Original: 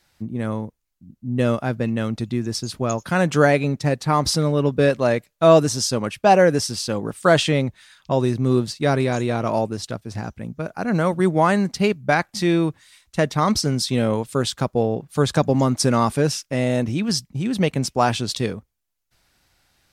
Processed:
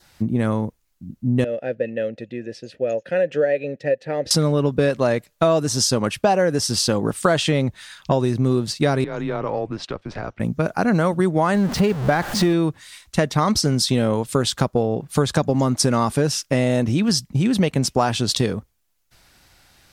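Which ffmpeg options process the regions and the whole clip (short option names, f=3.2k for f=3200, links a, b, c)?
-filter_complex "[0:a]asettb=1/sr,asplit=3[a][b][c];[a]atrim=end=1.444[d];[b]atrim=start=1.44:end=4.31,asetpts=PTS-STARTPTS,afade=t=in:d=0.004:c=qsin,afade=t=out:st=2.866:d=0.004:c=qsin,asplit=3[e][f][g];[e]bandpass=f=530:t=q:w=8,volume=0dB[h];[f]bandpass=f=1.84k:t=q:w=8,volume=-6dB[i];[g]bandpass=f=2.48k:t=q:w=8,volume=-9dB[j];[h][i][j]amix=inputs=3:normalize=0,lowshelf=f=240:g=8[k];[c]atrim=start=4.306[l];[d][k]acrossfade=d=0.004:c1=hsin:c2=qsin[m];[m][l]acrossfade=d=0.004:c1=qsin:c2=hsin,asettb=1/sr,asplit=3[n][o][p];[n]atrim=end=9.044[q];[o]atrim=start=9.04:end=10.4,asetpts=PTS-STARTPTS,afade=t=in:d=0.004:c=qsin,afade=t=out:st=1.356:d=0.004:c=qsin,highpass=280,lowpass=2.8k,acompressor=threshold=-34dB:ratio=2.5:attack=3.2:release=140:knee=1:detection=peak,afreqshift=-99[r];[p]atrim=start=10.396[s];[q][r]acrossfade=d=0.004:c1=hsin:c2=qsin[t];[t][s]acrossfade=d=0.004:c1=qsin:c2=hsin,asettb=1/sr,asplit=3[u][v][w];[u]atrim=end=11.544[x];[v]atrim=start=11.54:end=12.53,asetpts=PTS-STARTPTS,afade=t=in:d=0.004:c=qsin,afade=t=out:st=0.986:d=0.004:c=qsin,aeval=exprs='val(0)+0.5*0.0596*sgn(val(0))':c=same,highshelf=f=3k:g=-8.5[y];[w]atrim=start=12.526[z];[x][y]acrossfade=d=0.004:c1=hsin:c2=qsin[aa];[aa][z]acrossfade=d=0.004:c1=qsin:c2=hsin,acompressor=threshold=-25dB:ratio=5,adynamicequalizer=threshold=0.00178:dfrequency=2300:dqfactor=4.4:tfrequency=2300:tqfactor=4.4:attack=5:release=100:ratio=0.375:range=2:mode=cutabove:tftype=bell,volume=9dB"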